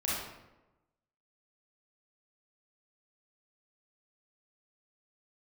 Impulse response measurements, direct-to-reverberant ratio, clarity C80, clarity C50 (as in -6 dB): -7.5 dB, 2.5 dB, -2.0 dB